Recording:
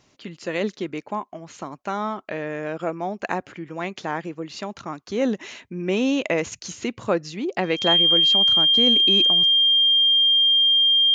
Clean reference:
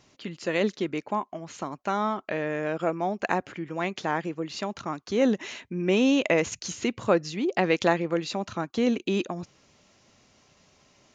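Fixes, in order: band-stop 3.2 kHz, Q 30

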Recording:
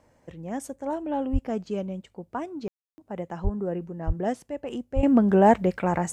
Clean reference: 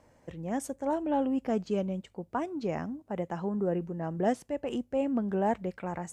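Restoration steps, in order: de-plosive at 1.32/3.43/4.06/4.95 s; room tone fill 2.68–2.98 s; trim 0 dB, from 5.03 s -11 dB

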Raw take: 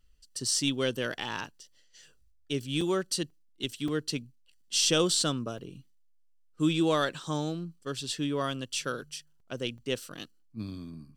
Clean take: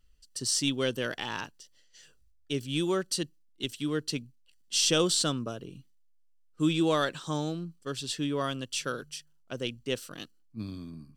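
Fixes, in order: interpolate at 2.81/3.30/3.88/5.58/9.40/9.78 s, 3.4 ms

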